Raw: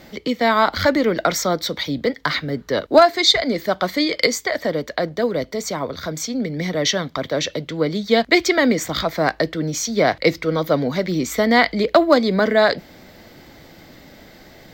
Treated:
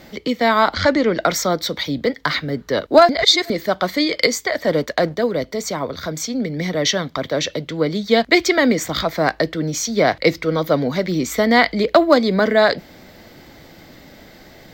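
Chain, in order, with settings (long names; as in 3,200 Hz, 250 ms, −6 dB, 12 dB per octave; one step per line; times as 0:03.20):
0:00.73–0:01.22: low-pass filter 7,800 Hz 24 dB per octave
0:03.09–0:03.50: reverse
0:04.67–0:05.15: leveller curve on the samples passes 1
level +1 dB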